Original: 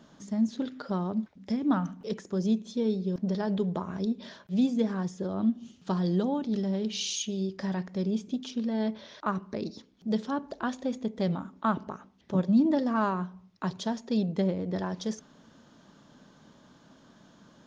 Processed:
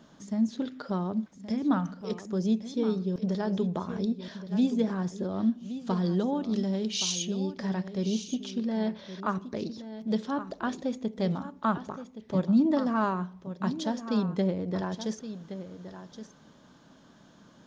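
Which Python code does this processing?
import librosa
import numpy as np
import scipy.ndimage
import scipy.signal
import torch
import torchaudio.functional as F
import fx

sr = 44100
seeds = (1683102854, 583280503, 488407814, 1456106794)

y = fx.high_shelf(x, sr, hz=4400.0, db=7.0, at=(6.49, 7.12))
y = y + 10.0 ** (-12.0 / 20.0) * np.pad(y, (int(1121 * sr / 1000.0), 0))[:len(y)]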